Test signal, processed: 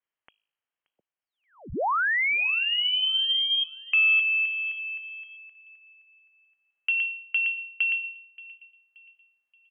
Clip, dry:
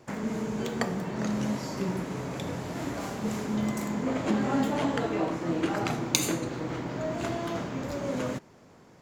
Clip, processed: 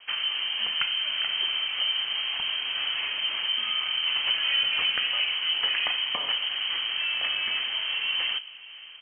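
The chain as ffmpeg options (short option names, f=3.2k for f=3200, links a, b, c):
-filter_complex "[0:a]bandreject=f=52.9:t=h:w=4,bandreject=f=105.8:t=h:w=4,bandreject=f=158.7:t=h:w=4,bandreject=f=211.6:t=h:w=4,bandreject=f=264.5:t=h:w=4,bandreject=f=317.4:t=h:w=4,bandreject=f=370.3:t=h:w=4,bandreject=f=423.2:t=h:w=4,bandreject=f=476.1:t=h:w=4,bandreject=f=529:t=h:w=4,bandreject=f=581.9:t=h:w=4,bandreject=f=634.8:t=h:w=4,bandreject=f=687.7:t=h:w=4,bandreject=f=740.6:t=h:w=4,bandreject=f=793.5:t=h:w=4,bandreject=f=846.4:t=h:w=4,bandreject=f=899.3:t=h:w=4,adynamicequalizer=threshold=0.00631:dfrequency=510:dqfactor=3.6:tfrequency=510:tqfactor=3.6:attack=5:release=100:ratio=0.375:range=2:mode=cutabove:tftype=bell,asplit=2[a][b];[b]acompressor=threshold=-33dB:ratio=6,volume=3dB[c];[a][c]amix=inputs=2:normalize=0,asoftclip=type=tanh:threshold=-10dB,asplit=2[d][e];[e]adelay=577,lowpass=f=1.3k:p=1,volume=-19dB,asplit=2[f][g];[g]adelay=577,lowpass=f=1.3k:p=1,volume=0.41,asplit=2[h][i];[i]adelay=577,lowpass=f=1.3k:p=1,volume=0.41[j];[f][h][j]amix=inputs=3:normalize=0[k];[d][k]amix=inputs=2:normalize=0,lowpass=f=2.8k:t=q:w=0.5098,lowpass=f=2.8k:t=q:w=0.6013,lowpass=f=2.8k:t=q:w=0.9,lowpass=f=2.8k:t=q:w=2.563,afreqshift=-3300,volume=-1dB"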